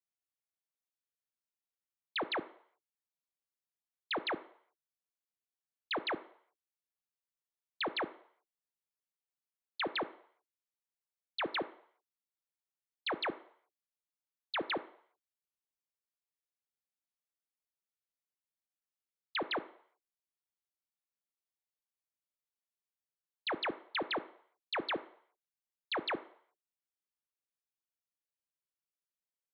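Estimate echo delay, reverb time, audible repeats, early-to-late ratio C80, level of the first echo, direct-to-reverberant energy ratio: none, 0.60 s, none, 19.5 dB, none, 12.0 dB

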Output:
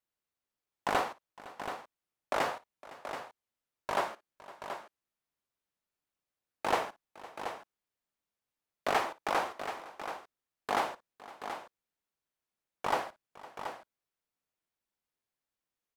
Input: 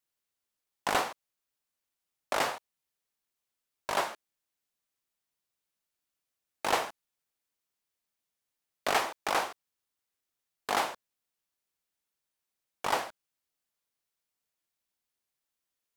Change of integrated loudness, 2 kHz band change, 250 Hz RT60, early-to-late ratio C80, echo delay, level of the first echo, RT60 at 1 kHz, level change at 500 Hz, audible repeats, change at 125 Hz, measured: -4.0 dB, -2.5 dB, none, none, 57 ms, -18.5 dB, none, 0.0 dB, 3, +0.5 dB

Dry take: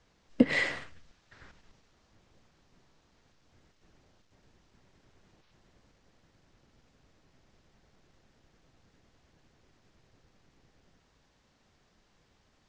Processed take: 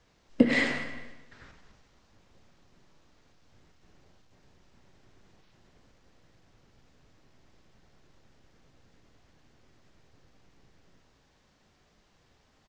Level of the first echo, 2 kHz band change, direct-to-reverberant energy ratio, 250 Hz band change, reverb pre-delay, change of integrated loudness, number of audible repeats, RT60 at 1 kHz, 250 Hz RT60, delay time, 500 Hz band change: -18.0 dB, +2.0 dB, 6.0 dB, +2.5 dB, 15 ms, +1.5 dB, 2, 1.1 s, 1.2 s, 0.223 s, +3.0 dB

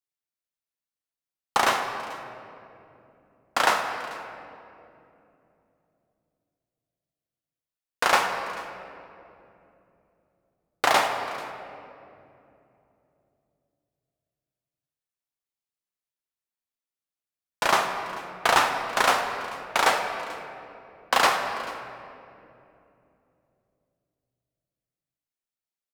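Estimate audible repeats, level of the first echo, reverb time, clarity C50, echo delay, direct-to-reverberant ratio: 1, -20.0 dB, 2.8 s, 5.5 dB, 0.439 s, 4.0 dB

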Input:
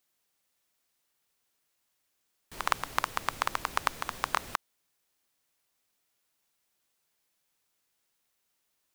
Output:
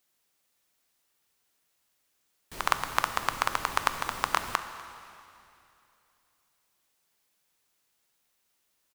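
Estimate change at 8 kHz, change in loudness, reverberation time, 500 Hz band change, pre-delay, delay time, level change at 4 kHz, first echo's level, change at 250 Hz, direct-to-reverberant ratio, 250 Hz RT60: +3.0 dB, +3.0 dB, 2.7 s, +3.0 dB, 7 ms, 0.246 s, +3.0 dB, -22.0 dB, +3.0 dB, 9.0 dB, 2.9 s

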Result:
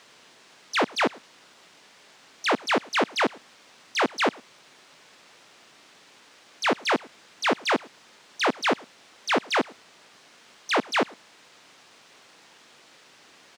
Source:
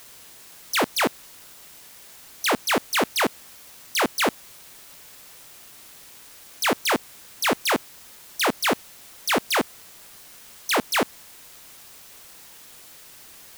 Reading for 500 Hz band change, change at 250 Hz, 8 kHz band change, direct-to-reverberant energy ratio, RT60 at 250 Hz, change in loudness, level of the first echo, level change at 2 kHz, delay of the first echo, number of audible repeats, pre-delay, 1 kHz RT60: -0.5 dB, -1.0 dB, -10.0 dB, none, none, -2.0 dB, -24.0 dB, -1.0 dB, 0.109 s, 1, none, none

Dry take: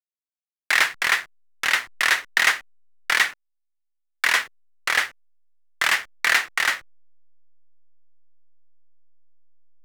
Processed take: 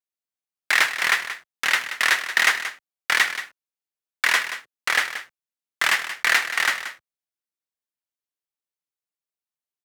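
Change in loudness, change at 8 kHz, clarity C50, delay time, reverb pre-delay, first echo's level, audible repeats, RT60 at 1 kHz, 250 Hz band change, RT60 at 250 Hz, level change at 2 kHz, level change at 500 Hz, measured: 0.0 dB, +0.5 dB, none, 0.179 s, none, -11.5 dB, 1, none, 0.0 dB, none, +0.5 dB, +0.5 dB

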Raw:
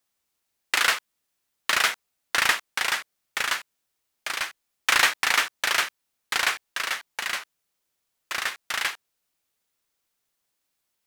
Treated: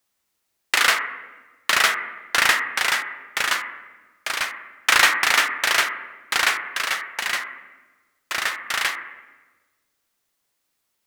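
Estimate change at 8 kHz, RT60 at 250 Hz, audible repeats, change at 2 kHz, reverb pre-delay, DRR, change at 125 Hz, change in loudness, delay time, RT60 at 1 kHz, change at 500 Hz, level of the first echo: +3.5 dB, 1.5 s, none, +4.5 dB, 8 ms, 6.0 dB, n/a, +4.0 dB, none, 1.2 s, +4.5 dB, none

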